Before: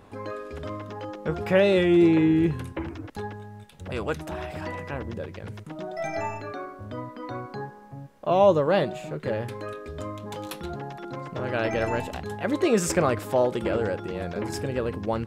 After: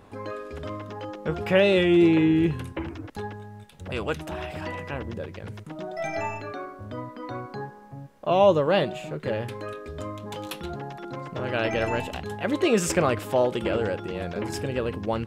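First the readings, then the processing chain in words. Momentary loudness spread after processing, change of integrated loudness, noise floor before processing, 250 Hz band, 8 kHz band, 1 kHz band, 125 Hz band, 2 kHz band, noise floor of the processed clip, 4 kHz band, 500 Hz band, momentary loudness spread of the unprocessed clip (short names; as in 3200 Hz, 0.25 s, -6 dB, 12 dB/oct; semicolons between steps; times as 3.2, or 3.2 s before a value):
18 LU, +0.5 dB, -47 dBFS, 0.0 dB, 0.0 dB, 0.0 dB, 0.0 dB, +1.5 dB, -47 dBFS, +4.0 dB, 0.0 dB, 18 LU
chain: dynamic EQ 2900 Hz, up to +6 dB, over -51 dBFS, Q 2.5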